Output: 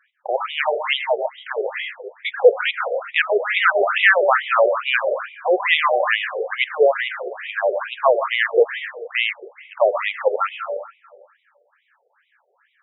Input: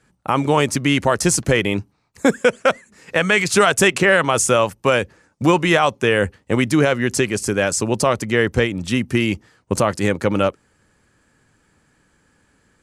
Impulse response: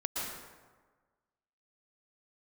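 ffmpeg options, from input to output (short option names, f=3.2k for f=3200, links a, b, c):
-filter_complex "[0:a]asettb=1/sr,asplit=3[a][b][c];[a]atrim=end=0.934[d];[b]atrim=start=0.93:end=1.45,asetpts=PTS-STARTPTS,afade=t=in:d=0.004:c=qsin,afade=t=out:st=0.516:d=0.004:c=qsin,asuperstop=centerf=1600:order=20:qfactor=0.79[e];[c]atrim=start=1.446[f];[d][e]acrossfade=d=0.004:c1=hsin:c2=qsin[g];[g][f]acrossfade=d=0.004:c1=qsin:c2=hsin,asplit=2[h][i];[1:a]atrim=start_sample=2205[j];[i][j]afir=irnorm=-1:irlink=0,volume=-5.5dB[k];[h][k]amix=inputs=2:normalize=0,afftfilt=real='re*between(b*sr/1024,530*pow(2800/530,0.5+0.5*sin(2*PI*2.3*pts/sr))/1.41,530*pow(2800/530,0.5+0.5*sin(2*PI*2.3*pts/sr))*1.41)':imag='im*between(b*sr/1024,530*pow(2800/530,0.5+0.5*sin(2*PI*2.3*pts/sr))/1.41,530*pow(2800/530,0.5+0.5*sin(2*PI*2.3*pts/sr))*1.41)':win_size=1024:overlap=0.75,volume=1.5dB"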